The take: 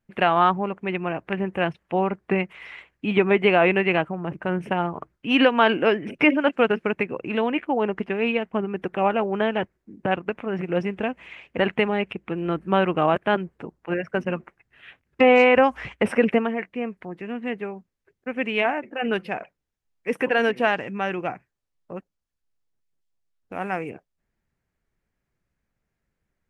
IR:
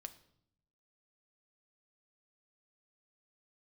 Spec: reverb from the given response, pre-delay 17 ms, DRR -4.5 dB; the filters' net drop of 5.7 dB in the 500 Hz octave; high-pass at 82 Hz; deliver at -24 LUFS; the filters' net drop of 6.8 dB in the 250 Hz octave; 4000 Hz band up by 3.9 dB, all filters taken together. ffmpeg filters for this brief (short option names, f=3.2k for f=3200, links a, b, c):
-filter_complex "[0:a]highpass=82,equalizer=f=250:t=o:g=-7.5,equalizer=f=500:t=o:g=-5,equalizer=f=4k:t=o:g=7,asplit=2[a][b];[1:a]atrim=start_sample=2205,adelay=17[c];[b][c]afir=irnorm=-1:irlink=0,volume=9.5dB[d];[a][d]amix=inputs=2:normalize=0,volume=-4.5dB"